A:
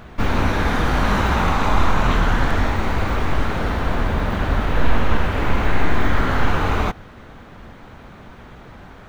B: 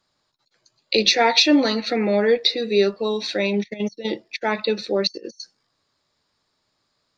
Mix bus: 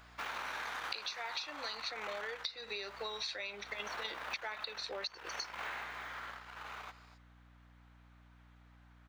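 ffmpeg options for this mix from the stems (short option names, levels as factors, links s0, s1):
-filter_complex "[0:a]aeval=exprs='(tanh(2.82*val(0)+0.7)-tanh(0.7))/2.82':c=same,volume=1.5,afade=t=out:st=2.16:d=0.32:silence=0.281838,afade=t=in:st=3.67:d=0.26:silence=0.281838,afade=t=out:st=5.6:d=0.29:silence=0.316228,asplit=2[s0][s1];[s1]volume=0.178[s2];[1:a]acompressor=threshold=0.0447:ratio=2.5,volume=1.26[s3];[s2]aecho=0:1:240:1[s4];[s0][s3][s4]amix=inputs=3:normalize=0,highpass=1000,aeval=exprs='val(0)+0.001*(sin(2*PI*60*n/s)+sin(2*PI*2*60*n/s)/2+sin(2*PI*3*60*n/s)/3+sin(2*PI*4*60*n/s)/4+sin(2*PI*5*60*n/s)/5)':c=same,acompressor=threshold=0.0141:ratio=16"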